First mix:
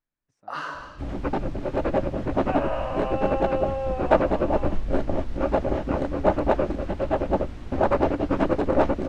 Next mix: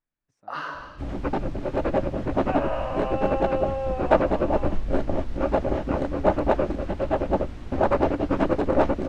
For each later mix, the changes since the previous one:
first sound: add peaking EQ 7.9 kHz -13 dB 0.54 oct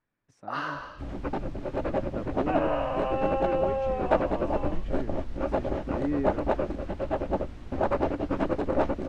speech +11.0 dB; second sound -5.0 dB

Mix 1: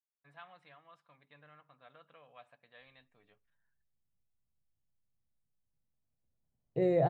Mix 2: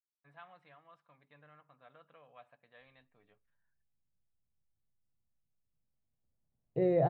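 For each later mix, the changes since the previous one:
master: add treble shelf 3.6 kHz -11 dB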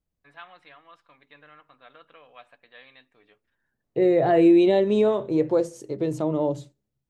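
second voice: entry -2.80 s; master: remove FFT filter 150 Hz 0 dB, 340 Hz -12 dB, 640 Hz -6 dB, 4.7 kHz -17 dB

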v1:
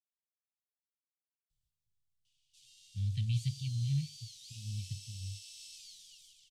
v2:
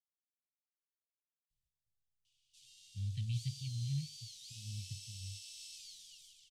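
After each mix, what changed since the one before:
speech -5.0 dB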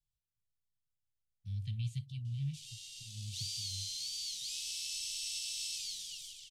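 speech: entry -1.50 s; background +11.5 dB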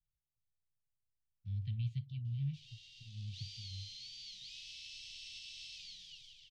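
master: add distance through air 250 m

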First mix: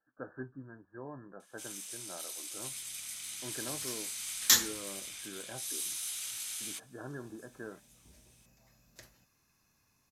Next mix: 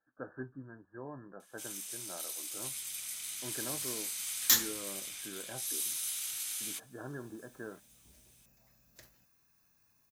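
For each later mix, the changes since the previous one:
second sound -3.5 dB; master: remove low-pass 11 kHz 12 dB/octave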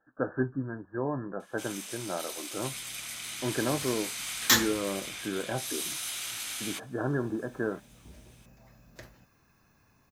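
master: remove pre-emphasis filter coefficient 0.8

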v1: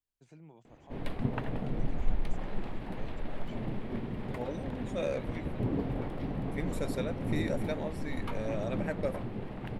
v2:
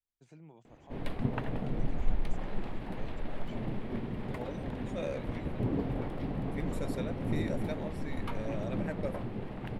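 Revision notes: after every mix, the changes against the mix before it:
second voice -4.0 dB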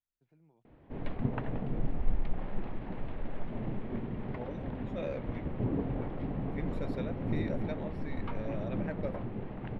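first voice -11.5 dB; second voice: add treble shelf 4.8 kHz +12 dB; master: add distance through air 310 m

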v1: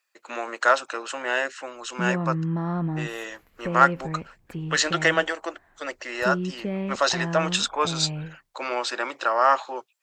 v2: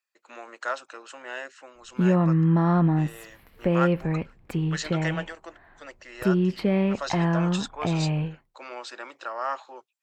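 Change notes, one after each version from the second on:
speech -11.0 dB; background +6.5 dB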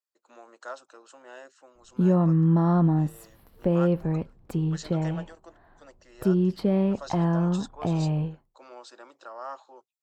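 speech -5.5 dB; master: add peaking EQ 2.2 kHz -12.5 dB 1.1 oct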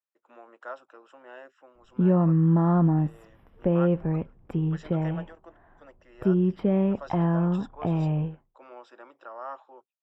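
master: add Savitzky-Golay filter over 25 samples

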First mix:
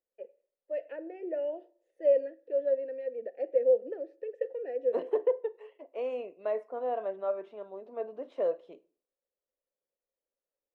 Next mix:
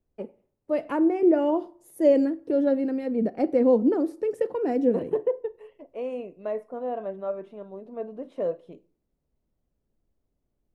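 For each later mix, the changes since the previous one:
first voice: remove vowel filter e; master: remove three-band isolator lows -22 dB, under 340 Hz, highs -19 dB, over 6.7 kHz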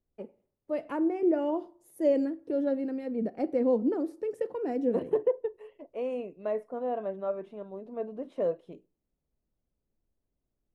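first voice -6.0 dB; second voice: send -10.5 dB

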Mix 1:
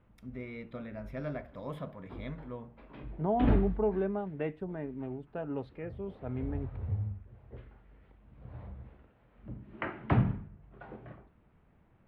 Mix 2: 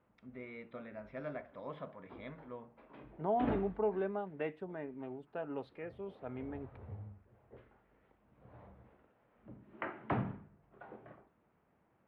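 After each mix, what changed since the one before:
first voice: add distance through air 250 m; background: add treble shelf 2.2 kHz -11 dB; master: add high-pass 490 Hz 6 dB/octave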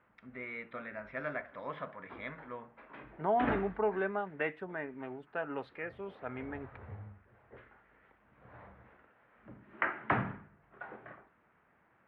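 master: add peaking EQ 1.7 kHz +12.5 dB 1.6 oct

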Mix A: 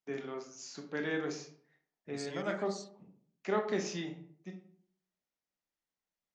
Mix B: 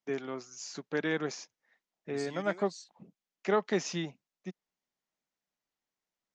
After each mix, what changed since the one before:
first voice +8.0 dB; reverb: off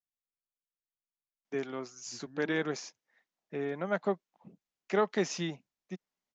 first voice: entry +1.45 s; second voice: add brick-wall FIR low-pass 1.8 kHz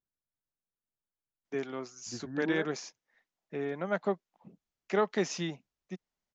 second voice +12.0 dB

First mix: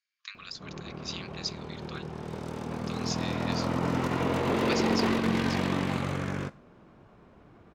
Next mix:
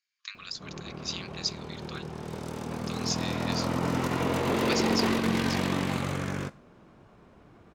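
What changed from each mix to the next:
master: add treble shelf 5.9 kHz +9 dB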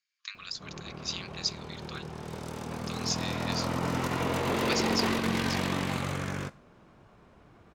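master: add peaking EQ 280 Hz -3.5 dB 2 oct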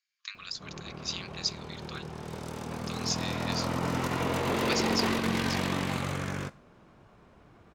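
no change

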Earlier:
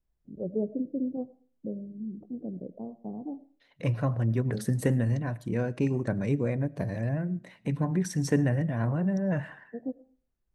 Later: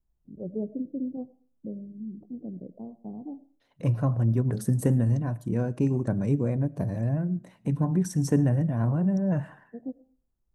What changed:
second voice +3.5 dB; master: add ten-band graphic EQ 500 Hz -4 dB, 2 kHz -11 dB, 4 kHz -8 dB

